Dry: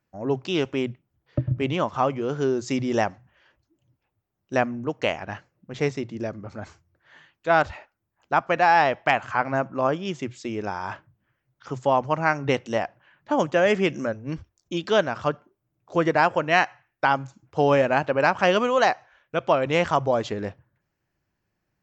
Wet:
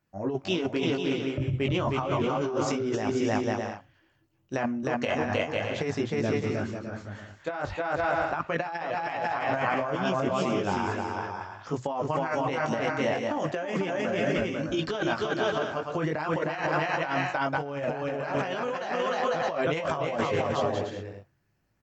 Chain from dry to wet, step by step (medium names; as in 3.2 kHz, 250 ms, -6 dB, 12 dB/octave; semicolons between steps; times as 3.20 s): chorus voices 2, 0.34 Hz, delay 20 ms, depth 2.1 ms; bouncing-ball echo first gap 310 ms, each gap 0.6×, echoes 5; compressor with a negative ratio -28 dBFS, ratio -1